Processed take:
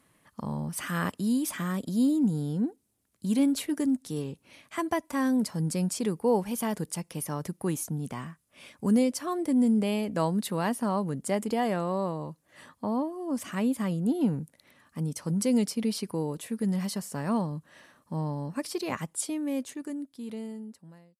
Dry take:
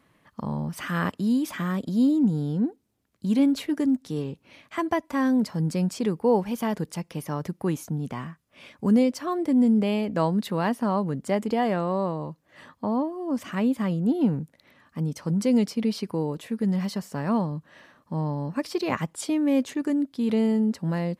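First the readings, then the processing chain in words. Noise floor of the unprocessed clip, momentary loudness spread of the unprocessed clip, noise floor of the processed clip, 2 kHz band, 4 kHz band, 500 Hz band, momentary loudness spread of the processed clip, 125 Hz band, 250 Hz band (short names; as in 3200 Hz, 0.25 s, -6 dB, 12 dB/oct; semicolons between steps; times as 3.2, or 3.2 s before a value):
-67 dBFS, 10 LU, -71 dBFS, -3.5 dB, -1.5 dB, -4.0 dB, 12 LU, -4.0 dB, -4.0 dB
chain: ending faded out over 3.02 s; bell 9900 Hz +13.5 dB 1.1 oct; gain -3.5 dB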